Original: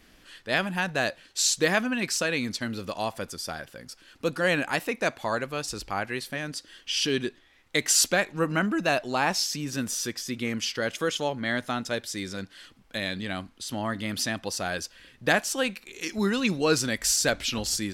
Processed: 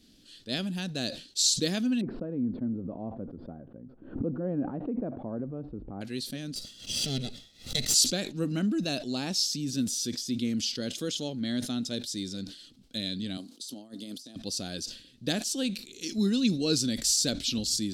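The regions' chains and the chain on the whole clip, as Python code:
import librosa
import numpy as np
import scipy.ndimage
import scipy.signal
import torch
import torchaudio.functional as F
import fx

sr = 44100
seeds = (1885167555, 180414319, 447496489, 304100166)

y = fx.chain(x, sr, fx.cheby2_lowpass(hz=5900.0, order=4, stop_db=80),
    fx.pre_swell(db_per_s=100.0), at=(2.01, 6.01))
y = fx.chain(y, sr, fx.lower_of_two(delay_ms=1.5),
    fx.pre_swell(db_per_s=150.0), at=(6.55, 7.94))
y = fx.chain(y, sr, fx.highpass(hz=400.0, slope=12),
    fx.peak_eq(hz=2000.0, db=-12.0, octaves=1.8),
    fx.over_compress(threshold_db=-41.0, ratio=-0.5), at=(13.37, 14.36))
y = fx.graphic_eq_10(y, sr, hz=(125, 250, 1000, 2000, 4000, 8000), db=(4, 10, -12, -9, 11, 4))
y = fx.sustainer(y, sr, db_per_s=110.0)
y = F.gain(torch.from_numpy(y), -7.5).numpy()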